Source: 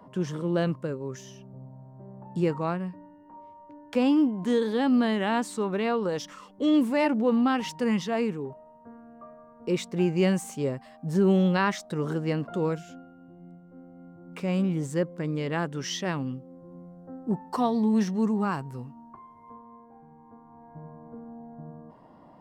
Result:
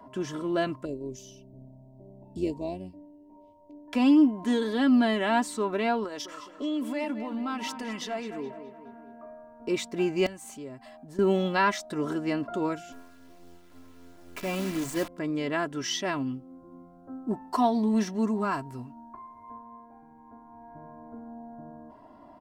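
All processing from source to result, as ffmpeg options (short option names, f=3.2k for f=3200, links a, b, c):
-filter_complex "[0:a]asettb=1/sr,asplit=3[a][b][c];[a]atrim=end=0.854[d];[b]atrim=start=0.85:end=3.88,asetpts=PTS-STARTPTS,afade=t=in:d=0.004:c=qsin,afade=t=out:st=3.026:d=0.004:c=qsin,tremolo=f=96:d=0.4,asuperstop=centerf=1400:order=4:qfactor=0.59[e];[c]atrim=start=3.876[f];[d][e]acrossfade=d=0.004:c1=hsin:c2=qsin[g];[g][f]acrossfade=d=0.004:c1=qsin:c2=hsin,asettb=1/sr,asplit=3[h][i][j];[h]atrim=end=6.044[k];[i]atrim=start=6.04:end=9.26,asetpts=PTS-STARTPTS,afade=t=in:d=0.004:c=qsin,afade=t=out:st=3.216:d=0.004:c=qsin,lowshelf=f=170:g=-9.5,acompressor=threshold=-31dB:ratio=4:attack=3.2:release=140:knee=1:detection=peak,asplit=2[l][m];[m]adelay=211,lowpass=f=3.2k:p=1,volume=-10dB,asplit=2[n][o];[o]adelay=211,lowpass=f=3.2k:p=1,volume=0.55,asplit=2[p][q];[q]adelay=211,lowpass=f=3.2k:p=1,volume=0.55,asplit=2[r][s];[s]adelay=211,lowpass=f=3.2k:p=1,volume=0.55,asplit=2[t][u];[u]adelay=211,lowpass=f=3.2k:p=1,volume=0.55,asplit=2[v][w];[w]adelay=211,lowpass=f=3.2k:p=1,volume=0.55[x];[l][n][p][r][t][v][x]amix=inputs=7:normalize=0,atrim=end_sample=142002[y];[j]atrim=start=9.256[z];[k][y]acrossfade=d=0.004:c1=hsin:c2=qsin[aa];[aa][z]acrossfade=d=0.004:c1=qsin:c2=hsin,asettb=1/sr,asplit=3[ab][ac][ad];[ab]atrim=end=10.264[ae];[ac]atrim=start=10.26:end=11.19,asetpts=PTS-STARTPTS,afade=t=in:d=0.004:c=qsin,afade=t=out:st=0.926:d=0.004:c=qsin,bandreject=f=5.5k:w=18,acompressor=threshold=-43dB:ratio=2.5:attack=3.2:release=140:knee=1:detection=peak,aeval=exprs='(mod(29.9*val(0)+1,2)-1)/29.9':c=same[af];[ad]atrim=start=11.186[ag];[ae][af]acrossfade=d=0.004:c1=hsin:c2=qsin[ah];[ah][ag]acrossfade=d=0.004:c1=qsin:c2=hsin,asettb=1/sr,asplit=3[ai][aj][ak];[ai]atrim=end=12.924[al];[aj]atrim=start=12.92:end=15.08,asetpts=PTS-STARTPTS,afade=t=in:d=0.004:c=qsin,afade=t=out:st=2.156:d=0.004:c=qsin,bandreject=f=50:t=h:w=6,bandreject=f=100:t=h:w=6,bandreject=f=150:t=h:w=6,bandreject=f=200:t=h:w=6,bandreject=f=250:t=h:w=6,acrusher=bits=7:dc=4:mix=0:aa=0.000001[am];[ak]atrim=start=15.076[an];[al][am]acrossfade=d=0.004:c1=hsin:c2=qsin[ao];[ao][an]acrossfade=d=0.004:c1=qsin:c2=hsin,equalizer=f=360:t=o:w=0.28:g=-5,bandreject=f=50:t=h:w=6,bandreject=f=100:t=h:w=6,aecho=1:1:3:0.72"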